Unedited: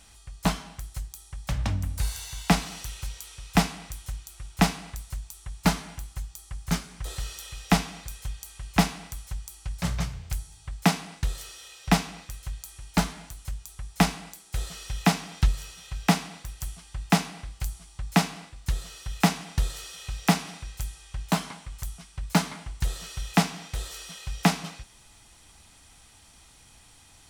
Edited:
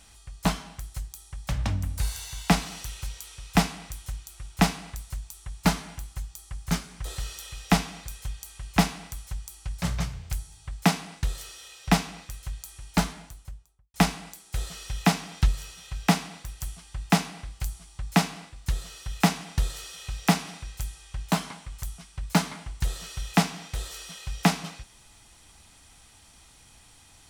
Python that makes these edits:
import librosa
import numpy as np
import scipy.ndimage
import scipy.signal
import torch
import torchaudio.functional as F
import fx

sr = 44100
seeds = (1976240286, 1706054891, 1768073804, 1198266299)

y = fx.studio_fade_out(x, sr, start_s=13.04, length_s=0.9)